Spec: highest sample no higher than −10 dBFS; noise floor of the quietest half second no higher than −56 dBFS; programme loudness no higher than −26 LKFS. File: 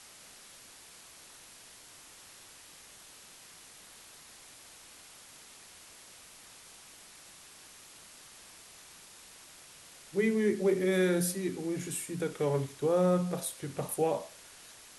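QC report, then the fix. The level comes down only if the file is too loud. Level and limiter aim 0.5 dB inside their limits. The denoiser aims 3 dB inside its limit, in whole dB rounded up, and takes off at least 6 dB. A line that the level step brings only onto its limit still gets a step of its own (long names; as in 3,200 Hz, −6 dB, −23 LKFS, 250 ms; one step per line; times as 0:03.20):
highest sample −16.5 dBFS: in spec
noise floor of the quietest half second −54 dBFS: out of spec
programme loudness −31.0 LKFS: in spec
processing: broadband denoise 6 dB, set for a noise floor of −54 dBFS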